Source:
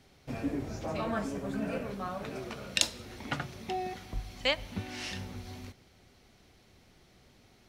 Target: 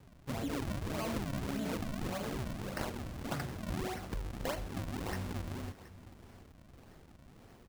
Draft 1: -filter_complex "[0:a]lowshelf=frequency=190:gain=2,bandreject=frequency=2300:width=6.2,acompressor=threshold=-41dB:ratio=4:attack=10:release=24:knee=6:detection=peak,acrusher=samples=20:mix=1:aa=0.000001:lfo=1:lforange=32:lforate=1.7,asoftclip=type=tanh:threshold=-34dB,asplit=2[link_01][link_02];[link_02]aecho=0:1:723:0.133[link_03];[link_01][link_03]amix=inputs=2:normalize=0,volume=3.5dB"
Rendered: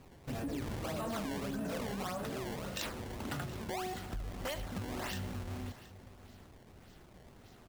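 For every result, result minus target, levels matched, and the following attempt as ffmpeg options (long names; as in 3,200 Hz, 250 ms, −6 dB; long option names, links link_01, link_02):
soft clipping: distortion +10 dB; sample-and-hold swept by an LFO: distortion −7 dB
-filter_complex "[0:a]lowshelf=frequency=190:gain=2,bandreject=frequency=2300:width=6.2,acompressor=threshold=-41dB:ratio=4:attack=10:release=24:knee=6:detection=peak,acrusher=samples=20:mix=1:aa=0.000001:lfo=1:lforange=32:lforate=1.7,asoftclip=type=tanh:threshold=-25dB,asplit=2[link_01][link_02];[link_02]aecho=0:1:723:0.133[link_03];[link_01][link_03]amix=inputs=2:normalize=0,volume=3.5dB"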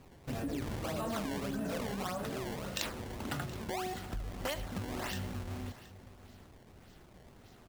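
sample-and-hold swept by an LFO: distortion −7 dB
-filter_complex "[0:a]lowshelf=frequency=190:gain=2,bandreject=frequency=2300:width=6.2,acompressor=threshold=-41dB:ratio=4:attack=10:release=24:knee=6:detection=peak,acrusher=samples=60:mix=1:aa=0.000001:lfo=1:lforange=96:lforate=1.7,asoftclip=type=tanh:threshold=-25dB,asplit=2[link_01][link_02];[link_02]aecho=0:1:723:0.133[link_03];[link_01][link_03]amix=inputs=2:normalize=0,volume=3.5dB"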